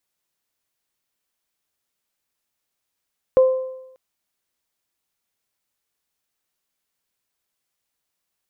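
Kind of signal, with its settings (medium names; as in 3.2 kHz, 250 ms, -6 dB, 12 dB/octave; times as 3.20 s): additive tone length 0.59 s, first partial 519 Hz, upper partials -19.5 dB, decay 0.89 s, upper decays 0.86 s, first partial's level -8 dB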